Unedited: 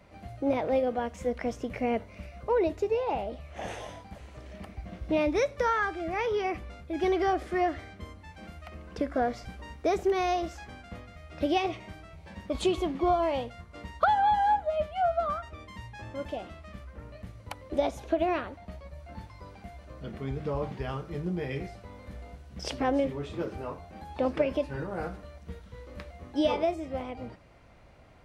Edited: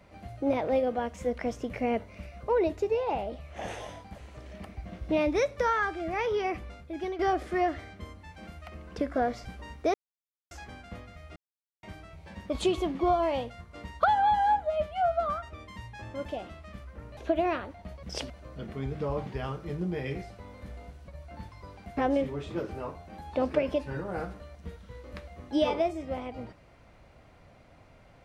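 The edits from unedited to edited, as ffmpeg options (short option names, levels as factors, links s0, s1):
-filter_complex "[0:a]asplit=11[s0][s1][s2][s3][s4][s5][s6][s7][s8][s9][s10];[s0]atrim=end=7.19,asetpts=PTS-STARTPTS,afade=t=out:st=6.68:d=0.51:silence=0.251189[s11];[s1]atrim=start=7.19:end=9.94,asetpts=PTS-STARTPTS,afade=t=in:d=0.004:c=hsin:silence=0.251189,afade=t=out:st=2.746:d=0.004:c=hsin[s12];[s2]atrim=start=9.94:end=10.51,asetpts=PTS-STARTPTS,volume=0[s13];[s3]atrim=start=10.51:end=11.36,asetpts=PTS-STARTPTS,afade=t=in:d=0.004:c=hsin,afade=t=out:st=0.846:d=0.004:c=hsin[s14];[s4]atrim=start=11.36:end=11.83,asetpts=PTS-STARTPTS,volume=0[s15];[s5]atrim=start=11.83:end=17.172,asetpts=PTS-STARTPTS,afade=t=in:d=0.004:c=hsin[s16];[s6]atrim=start=17.998:end=18.862[s17];[s7]atrim=start=22.528:end=22.802[s18];[s8]atrim=start=19.748:end=22.532[s19];[s9]atrim=start=18.858:end=19.752[s20];[s10]atrim=start=22.798[s21];[s11][s12][s13][s14][s15][s16]concat=n=6:v=0:a=1[s22];[s22][s17]acrossfade=d=0.004:c1=hsin:c2=hsin[s23];[s23][s18]acrossfade=d=0.004:c1=hsin:c2=hsin[s24];[s24][s19]acrossfade=d=0.004:c1=hsin:c2=hsin[s25];[s25][s20]acrossfade=d=0.004:c1=hsin:c2=hsin[s26];[s26][s21]acrossfade=d=0.004:c1=hsin:c2=hsin"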